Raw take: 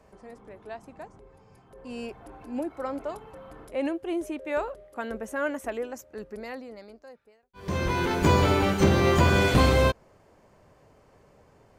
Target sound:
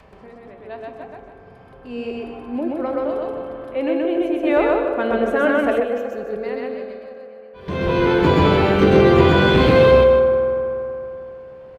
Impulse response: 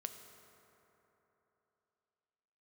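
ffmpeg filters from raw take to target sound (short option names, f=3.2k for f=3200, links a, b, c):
-filter_complex "[0:a]asplit=2[a][b];[b]aeval=exprs='0.355*sin(PI/2*1.78*val(0)/0.355)':c=same,volume=-9dB[c];[a][c]amix=inputs=2:normalize=0,adynamicequalizer=threshold=0.0158:dfrequency=370:dqfactor=0.8:tfrequency=370:tqfactor=0.8:attack=5:release=100:ratio=0.375:range=3:mode=boostabove:tftype=bell[d];[1:a]atrim=start_sample=2205,asetrate=48510,aresample=44100[e];[d][e]afir=irnorm=-1:irlink=0,acompressor=mode=upward:threshold=-41dB:ratio=2.5,highshelf=f=4.9k:t=q:w=1.5:g=-11.5,aecho=1:1:128.3|279.9:0.891|0.316,asettb=1/sr,asplit=3[f][g][h];[f]atrim=end=4.434[i];[g]atrim=start=4.43:end=5.8,asetpts=PTS-STARTPTS,afade=t=in:d=0.004:c=qsin,afade=t=out:st=1.366:d=0.004:c=qsin,acontrast=39[j];[h]atrim=start=5.796[k];[i][j]acrossfade=d=0.004:c1=hsin:c2=qsin[l];[l][k]acrossfade=d=0.004:c1=qsin:c2=hsin"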